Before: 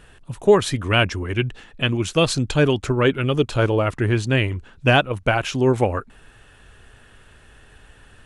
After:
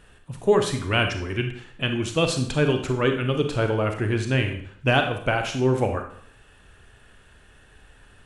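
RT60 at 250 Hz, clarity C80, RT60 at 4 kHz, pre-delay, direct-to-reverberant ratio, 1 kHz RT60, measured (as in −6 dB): 0.60 s, 11.0 dB, 0.55 s, 28 ms, 5.0 dB, 0.60 s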